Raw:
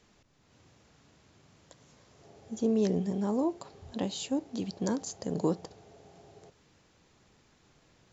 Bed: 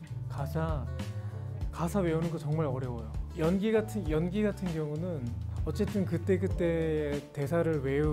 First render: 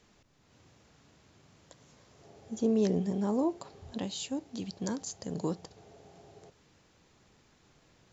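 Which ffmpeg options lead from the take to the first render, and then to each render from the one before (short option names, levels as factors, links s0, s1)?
-filter_complex "[0:a]asettb=1/sr,asplit=3[s0][s1][s2];[s0]atrim=end=3.984[s3];[s1]atrim=start=3.98:end=5.77,asetpts=PTS-STARTPTS,afade=t=in:d=0.004:c=qsin,afade=t=out:st=1.786:d=0.004:c=qsin,equalizer=f=470:t=o:w=2.8:g=-5.5[s4];[s2]atrim=start=5.766[s5];[s3][s4]acrossfade=d=0.004:c1=hsin:c2=qsin[s6];[s6][s5]acrossfade=d=0.004:c1=qsin:c2=hsin"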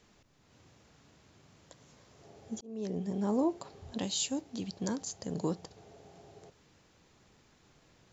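-filter_complex "[0:a]asettb=1/sr,asplit=3[s0][s1][s2];[s0]atrim=end=3.994[s3];[s1]atrim=start=3.99:end=4.41,asetpts=PTS-STARTPTS,afade=t=in:d=0.004:c=qsin,afade=t=out:st=0.416:d=0.004:c=qsin,highshelf=f=4100:g=10[s4];[s2]atrim=start=4.406[s5];[s3][s4]acrossfade=d=0.004:c1=hsin:c2=qsin[s6];[s6][s5]acrossfade=d=0.004:c1=qsin:c2=hsin,asplit=2[s7][s8];[s7]atrim=end=2.61,asetpts=PTS-STARTPTS,afade=t=out:st=2.606:d=0.004:c=hsin[s9];[s8]atrim=start=2.61,asetpts=PTS-STARTPTS,afade=t=in:d=0.72[s10];[s9][s10]concat=n=2:v=0:a=1"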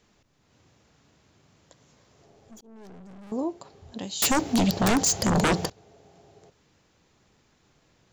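-filter_complex "[0:a]asettb=1/sr,asplit=3[s0][s1][s2];[s0]atrim=end=2.254[s3];[s1]atrim=start=2.25:end=3.32,asetpts=PTS-STARTPTS,afade=t=in:d=0.004:c=qsin,afade=t=out:st=1.066:d=0.004:c=qsin,aeval=exprs='(tanh(178*val(0)+0.45)-tanh(0.45))/178':c=same[s4];[s2]atrim=start=3.316[s5];[s3][s4]acrossfade=d=0.004:c1=hsin:c2=qsin[s6];[s6][s5]acrossfade=d=0.004:c1=qsin:c2=hsin,asettb=1/sr,asplit=3[s7][s8][s9];[s7]atrim=end=4.224[s10];[s8]atrim=start=4.22:end=5.7,asetpts=PTS-STARTPTS,afade=t=in:d=0.004:c=qsin,afade=t=out:st=1.476:d=0.004:c=qsin,aeval=exprs='0.133*sin(PI/2*7.94*val(0)/0.133)':c=same[s11];[s9]atrim=start=5.696[s12];[s10][s11]acrossfade=d=0.004:c1=hsin:c2=qsin[s13];[s13][s12]acrossfade=d=0.004:c1=qsin:c2=hsin"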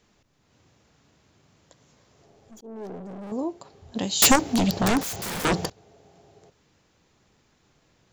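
-filter_complex "[0:a]asettb=1/sr,asplit=3[s0][s1][s2];[s0]atrim=end=2.624[s3];[s1]atrim=start=2.62:end=3.32,asetpts=PTS-STARTPTS,afade=t=in:d=0.004:c=qsin,afade=t=out:st=0.696:d=0.004:c=qsin,equalizer=f=470:t=o:w=2.8:g=13[s4];[s2]atrim=start=3.316[s5];[s3][s4]acrossfade=d=0.004:c1=hsin:c2=qsin[s6];[s6][s5]acrossfade=d=0.004:c1=qsin:c2=hsin,asettb=1/sr,asplit=3[s7][s8][s9];[s7]atrim=end=3.954[s10];[s8]atrim=start=3.95:end=4.36,asetpts=PTS-STARTPTS,afade=t=in:d=0.004:c=qsin,afade=t=out:st=0.406:d=0.004:c=qsin,acontrast=85[s11];[s9]atrim=start=4.356[s12];[s10][s11]acrossfade=d=0.004:c1=hsin:c2=qsin[s13];[s13][s12]acrossfade=d=0.004:c1=qsin:c2=hsin,asettb=1/sr,asplit=3[s14][s15][s16];[s14]atrim=end=5.014[s17];[s15]atrim=start=5.01:end=5.45,asetpts=PTS-STARTPTS,afade=t=in:d=0.004:c=qsin,afade=t=out:st=0.436:d=0.004:c=qsin,aeval=exprs='(mod(22.4*val(0)+1,2)-1)/22.4':c=same[s18];[s16]atrim=start=5.446[s19];[s17][s18]acrossfade=d=0.004:c1=hsin:c2=qsin[s20];[s20][s19]acrossfade=d=0.004:c1=qsin:c2=hsin"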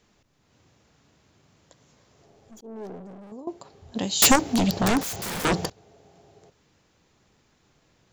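-filter_complex "[0:a]asplit=2[s0][s1];[s0]atrim=end=3.47,asetpts=PTS-STARTPTS,afade=t=out:st=2.8:d=0.67:silence=0.158489[s2];[s1]atrim=start=3.47,asetpts=PTS-STARTPTS,afade=t=in:d=0.004:c=hsin:silence=0.158489[s3];[s2][s3]concat=n=2:v=0:a=1"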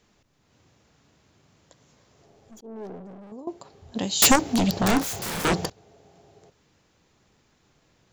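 -filter_complex "[0:a]asettb=1/sr,asplit=3[s0][s1][s2];[s0]atrim=end=2.604[s3];[s1]atrim=start=2.6:end=3.38,asetpts=PTS-STARTPTS,afade=t=in:d=0.004:c=qsin,afade=t=out:st=0.776:d=0.004:c=qsin,highshelf=f=7500:g=-9.5[s4];[s2]atrim=start=3.376[s5];[s3][s4]acrossfade=d=0.004:c1=hsin:c2=qsin[s6];[s6][s5]acrossfade=d=0.004:c1=qsin:c2=hsin,asettb=1/sr,asplit=3[s7][s8][s9];[s7]atrim=end=4.854[s10];[s8]atrim=start=4.85:end=5.54,asetpts=PTS-STARTPTS,afade=t=in:d=0.004:c=qsin,afade=t=out:st=0.686:d=0.004:c=qsin,asplit=2[s11][s12];[s12]adelay=30,volume=0.447[s13];[s11][s13]amix=inputs=2:normalize=0,atrim=end_sample=30429[s14];[s9]atrim=start=5.536[s15];[s10][s14]acrossfade=d=0.004:c1=hsin:c2=qsin[s16];[s16][s15]acrossfade=d=0.004:c1=qsin:c2=hsin"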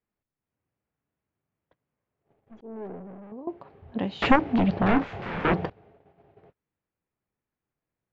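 -af "lowpass=f=2500:w=0.5412,lowpass=f=2500:w=1.3066,agate=range=0.0631:threshold=0.002:ratio=16:detection=peak"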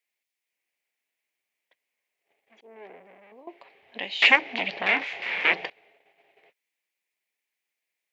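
-af "highpass=630,highshelf=f=1700:t=q:w=3:g=8"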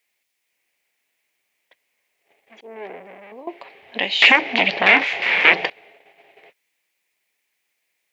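-af "alimiter=level_in=3.55:limit=0.891:release=50:level=0:latency=1"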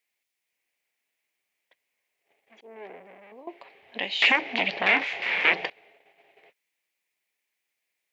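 -af "volume=0.398"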